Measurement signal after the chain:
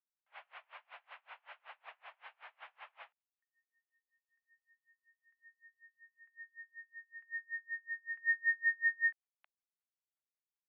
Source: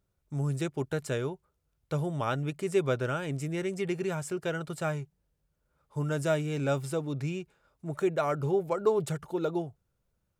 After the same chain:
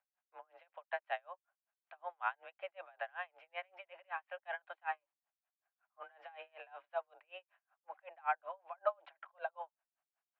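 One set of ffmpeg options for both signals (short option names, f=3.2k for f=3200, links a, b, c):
-af "highpass=f=530:t=q:w=0.5412,highpass=f=530:t=q:w=1.307,lowpass=f=2.7k:t=q:w=0.5176,lowpass=f=2.7k:t=q:w=0.7071,lowpass=f=2.7k:t=q:w=1.932,afreqshift=180,aeval=exprs='val(0)*pow(10,-34*(0.5-0.5*cos(2*PI*5.3*n/s))/20)':c=same"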